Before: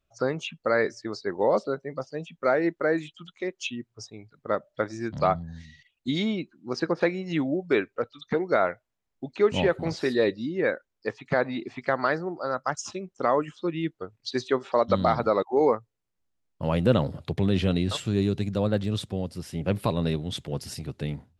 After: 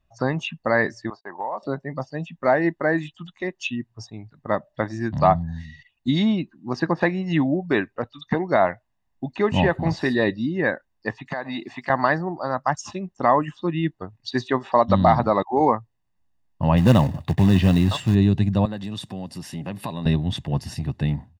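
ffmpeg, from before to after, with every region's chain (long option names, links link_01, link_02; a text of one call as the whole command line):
ffmpeg -i in.wav -filter_complex "[0:a]asettb=1/sr,asplit=3[link_01][link_02][link_03];[link_01]atrim=end=1.104[link_04];[link_02]atrim=start=1.1:end=1.63,asetpts=PTS-STARTPTS,afade=type=in:duration=0.004:curve=qsin,afade=type=out:start_time=0.526:duration=0.004:curve=qsin,agate=range=-30dB:threshold=-42dB:ratio=16:release=100:detection=peak,bandpass=frequency=970:width_type=q:width=1.5,acompressor=threshold=-32dB:ratio=3:attack=3.2:release=140:knee=1:detection=peak[link_05];[link_03]atrim=start=1.626[link_06];[link_04][link_05]acrossfade=duration=0.004:curve1=hsin:curve2=qsin[link_07];[link_07][link_06]acrossfade=duration=0.004:curve1=qsin:curve2=hsin,asettb=1/sr,asplit=3[link_08][link_09][link_10];[link_08]atrim=end=11.274[link_11];[link_09]atrim=start=11.27:end=11.9,asetpts=PTS-STARTPTS,afade=type=in:duration=0.004:curve=qsin,afade=type=out:start_time=0.626:duration=0.004:curve=qsin,aemphasis=mode=production:type=cd,acompressor=threshold=-26dB:ratio=12:attack=3.2:release=140:knee=1:detection=peak,highpass=frequency=340:poles=1[link_12];[link_10]atrim=start=11.896[link_13];[link_11][link_12]acrossfade=duration=0.004:curve1=hsin:curve2=qsin[link_14];[link_14][link_13]acrossfade=duration=0.004:curve1=qsin:curve2=hsin,asettb=1/sr,asplit=3[link_15][link_16][link_17];[link_15]atrim=end=16.774[link_18];[link_16]atrim=start=16.77:end=18.15,asetpts=PTS-STARTPTS,afade=type=in:duration=0.004:curve=qsin,afade=type=out:start_time=1.376:duration=0.004:curve=qsin,highpass=frequency=46:poles=1,acrusher=bits=4:mode=log:mix=0:aa=0.000001[link_19];[link_17]atrim=start=18.146[link_20];[link_18][link_19]acrossfade=duration=0.004:curve1=hsin:curve2=qsin[link_21];[link_21][link_20]acrossfade=duration=0.004:curve1=qsin:curve2=hsin,asettb=1/sr,asplit=3[link_22][link_23][link_24];[link_22]atrim=end=18.654[link_25];[link_23]atrim=start=18.65:end=20.06,asetpts=PTS-STARTPTS,afade=type=in:duration=0.004:curve=qsin,afade=type=out:start_time=1.406:duration=0.004:curve=qsin,highshelf=frequency=3600:gain=8.5,acompressor=threshold=-34dB:ratio=2.5:attack=3.2:release=140:knee=1:detection=peak,highpass=170[link_26];[link_24]atrim=start=20.056[link_27];[link_25][link_26]acrossfade=duration=0.004:curve1=hsin:curve2=qsin[link_28];[link_28][link_27]acrossfade=duration=0.004:curve1=qsin:curve2=hsin,highshelf=frequency=3700:gain=-11.5,aecho=1:1:1.1:0.62,volume=6dB" out.wav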